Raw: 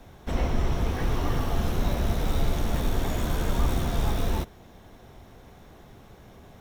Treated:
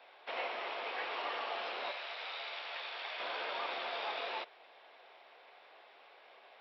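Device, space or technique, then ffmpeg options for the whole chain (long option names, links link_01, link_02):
musical greeting card: -filter_complex "[0:a]asettb=1/sr,asplit=3[link_01][link_02][link_03];[link_01]atrim=end=1.914[link_04];[link_02]atrim=start=1.91:end=3.2,asetpts=PTS-STARTPTS,afade=type=in:duration=0.004:curve=qsin,afade=type=out:start_time=1.286:duration=0.004:curve=qsin,highpass=frequency=1400:poles=1[link_05];[link_03]atrim=start=3.196[link_06];[link_04][link_05]acrossfade=duration=0.004:curve1=hsin:curve2=qsin[link_07];[link_07][link_06]acrossfade=duration=0.004:curve1=qsin:curve2=hsin,aresample=11025,aresample=44100,highpass=frequency=540:width=0.5412,highpass=frequency=540:width=1.3066,equalizer=frequency=2500:width_type=o:width=0.6:gain=8,volume=-4dB"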